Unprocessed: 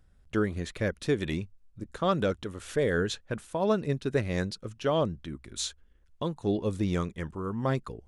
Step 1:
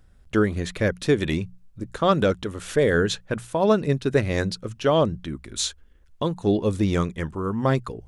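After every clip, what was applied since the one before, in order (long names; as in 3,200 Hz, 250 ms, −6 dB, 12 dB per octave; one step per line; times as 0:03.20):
mains-hum notches 60/120/180 Hz
level +7 dB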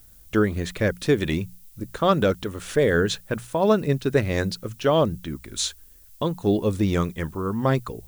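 background noise violet −53 dBFS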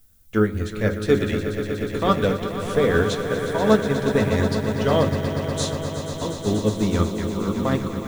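echo that builds up and dies away 121 ms, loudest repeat 5, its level −10 dB
convolution reverb RT60 0.30 s, pre-delay 4 ms, DRR 6 dB
expander for the loud parts 1.5 to 1, over −28 dBFS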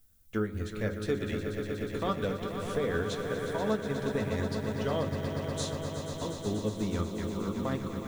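downward compressor 2 to 1, threshold −22 dBFS, peak gain reduction 6.5 dB
level −7.5 dB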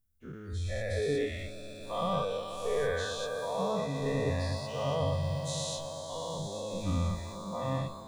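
every bin's largest magnitude spread in time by 240 ms
noise reduction from a noise print of the clip's start 17 dB
low-shelf EQ 320 Hz +6 dB
level −5.5 dB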